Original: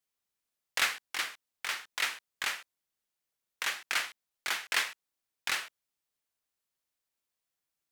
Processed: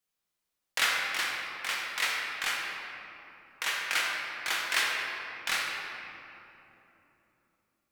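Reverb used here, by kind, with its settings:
rectangular room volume 160 cubic metres, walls hard, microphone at 0.58 metres

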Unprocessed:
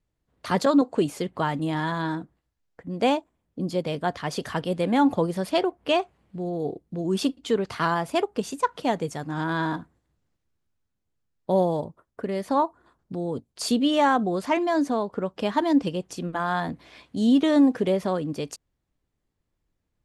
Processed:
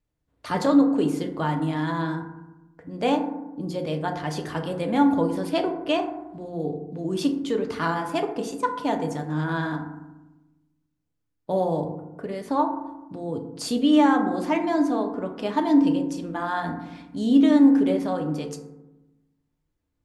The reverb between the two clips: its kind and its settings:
feedback delay network reverb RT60 1 s, low-frequency decay 1.45×, high-frequency decay 0.35×, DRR 3.5 dB
level −3 dB

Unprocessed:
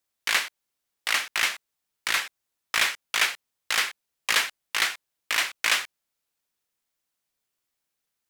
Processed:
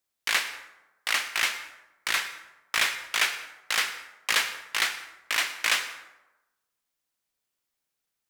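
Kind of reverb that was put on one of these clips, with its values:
dense smooth reverb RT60 1 s, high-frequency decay 0.55×, pre-delay 90 ms, DRR 12 dB
level −1.5 dB

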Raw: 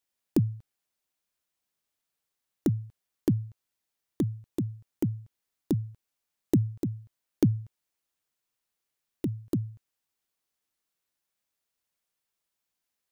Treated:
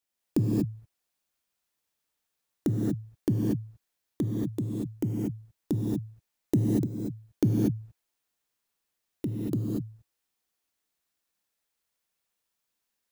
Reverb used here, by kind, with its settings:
reverb whose tail is shaped and stops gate 260 ms rising, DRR −2.5 dB
level −2 dB

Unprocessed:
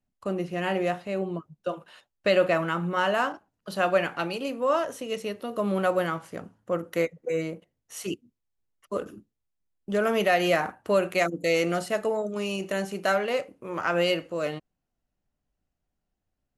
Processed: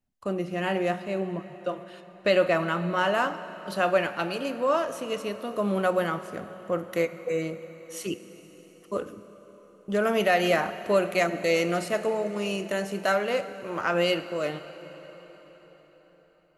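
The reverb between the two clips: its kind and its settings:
dense smooth reverb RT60 5 s, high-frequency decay 0.85×, DRR 11.5 dB

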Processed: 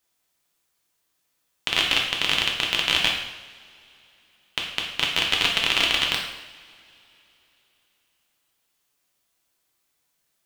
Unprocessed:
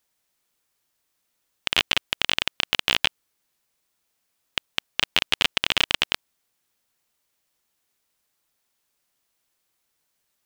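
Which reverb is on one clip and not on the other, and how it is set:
coupled-rooms reverb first 0.83 s, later 3.5 s, from −22 dB, DRR −1 dB
level −2 dB

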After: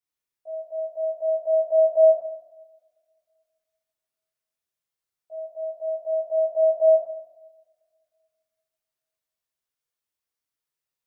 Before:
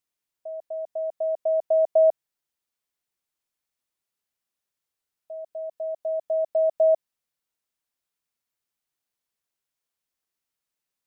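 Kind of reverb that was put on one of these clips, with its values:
coupled-rooms reverb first 0.86 s, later 2.4 s, from −25 dB, DRR −8 dB
level −11 dB

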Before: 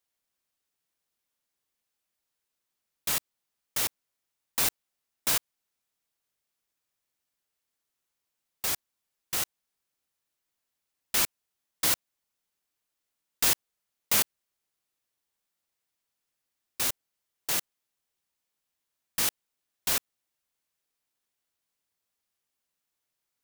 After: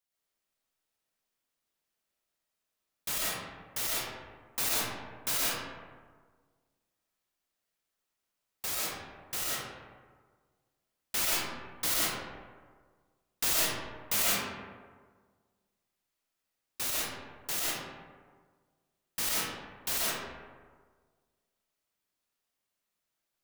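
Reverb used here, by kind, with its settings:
comb and all-pass reverb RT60 1.6 s, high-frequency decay 0.45×, pre-delay 70 ms, DRR −6 dB
level −6 dB

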